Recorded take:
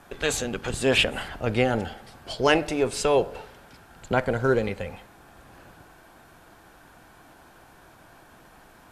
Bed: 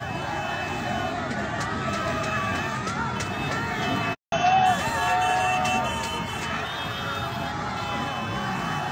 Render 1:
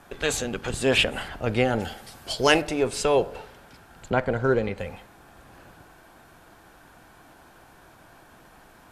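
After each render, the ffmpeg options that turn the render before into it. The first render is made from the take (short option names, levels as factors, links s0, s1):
-filter_complex "[0:a]asettb=1/sr,asplit=3[s0][s1][s2];[s0]atrim=end=1.814[s3];[s1]atrim=start=1.81:end=2.62,asetpts=PTS-STARTPTS,afade=t=in:d=0.004:c=qsin,afade=t=out:st=0.806:d=0.004:c=qsin,highshelf=f=4100:g=11[s4];[s2]atrim=start=2.616[s5];[s3][s4]acrossfade=d=0.004:c1=hsin:c2=qsin[s6];[s6][s5]acrossfade=d=0.004:c1=qsin:c2=hsin,asettb=1/sr,asplit=3[s7][s8][s9];[s7]atrim=end=4.104[s10];[s8]atrim=start=4.1:end=4.78,asetpts=PTS-STARTPTS,afade=t=in:d=0.004:c=qsin,afade=t=out:st=0.676:d=0.004:c=qsin,lowpass=f=3500:p=1[s11];[s9]atrim=start=4.776[s12];[s10][s11]acrossfade=d=0.004:c1=hsin:c2=qsin[s13];[s13][s12]acrossfade=d=0.004:c1=qsin:c2=hsin"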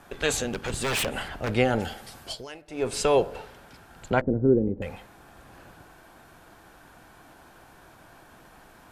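-filter_complex "[0:a]asettb=1/sr,asplit=3[s0][s1][s2];[s0]atrim=end=0.474[s3];[s1]atrim=start=0.47:end=1.55,asetpts=PTS-STARTPTS,afade=t=in:d=0.004:c=qsin,afade=t=out:st=1.076:d=0.004:c=qsin,aeval=exprs='0.0841*(abs(mod(val(0)/0.0841+3,4)-2)-1)':c=same[s4];[s2]atrim=start=1.546[s5];[s3][s4]acrossfade=d=0.004:c1=hsin:c2=qsin[s6];[s6][s5]acrossfade=d=0.004:c1=qsin:c2=hsin,asettb=1/sr,asplit=3[s7][s8][s9];[s7]atrim=end=4.214[s10];[s8]atrim=start=4.21:end=4.82,asetpts=PTS-STARTPTS,afade=t=in:d=0.004:c=qsin,afade=t=out:st=0.606:d=0.004:c=qsin,lowpass=f=310:t=q:w=2.7[s11];[s9]atrim=start=4.816[s12];[s10][s11]acrossfade=d=0.004:c1=hsin:c2=qsin[s13];[s13][s12]acrossfade=d=0.004:c1=qsin:c2=hsin,asplit=3[s14][s15][s16];[s14]atrim=end=2.46,asetpts=PTS-STARTPTS,afade=t=out:st=2.2:d=0.26:silence=0.0668344[s17];[s15]atrim=start=2.46:end=2.67,asetpts=PTS-STARTPTS,volume=0.0668[s18];[s16]atrim=start=2.67,asetpts=PTS-STARTPTS,afade=t=in:d=0.26:silence=0.0668344[s19];[s17][s18][s19]concat=n=3:v=0:a=1"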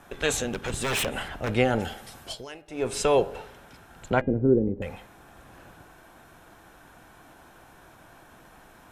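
-af "bandreject=f=4600:w=9.7,bandreject=f=405.4:t=h:w=4,bandreject=f=810.8:t=h:w=4,bandreject=f=1216.2:t=h:w=4,bandreject=f=1621.6:t=h:w=4,bandreject=f=2027:t=h:w=4,bandreject=f=2432.4:t=h:w=4,bandreject=f=2837.8:t=h:w=4,bandreject=f=3243.2:t=h:w=4,bandreject=f=3648.6:t=h:w=4,bandreject=f=4054:t=h:w=4"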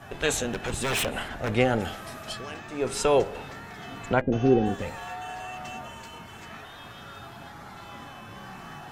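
-filter_complex "[1:a]volume=0.188[s0];[0:a][s0]amix=inputs=2:normalize=0"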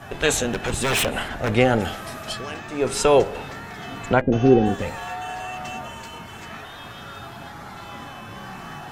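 -af "volume=1.88,alimiter=limit=0.708:level=0:latency=1"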